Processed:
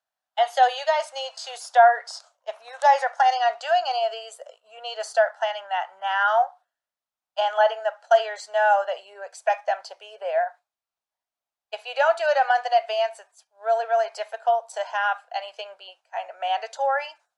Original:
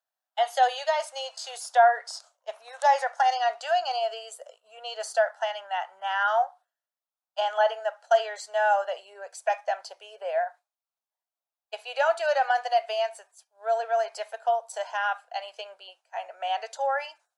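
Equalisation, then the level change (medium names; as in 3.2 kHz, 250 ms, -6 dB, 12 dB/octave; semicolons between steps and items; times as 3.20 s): peaking EQ 380 Hz -2 dB; treble shelf 8.8 kHz -12 dB; +4.0 dB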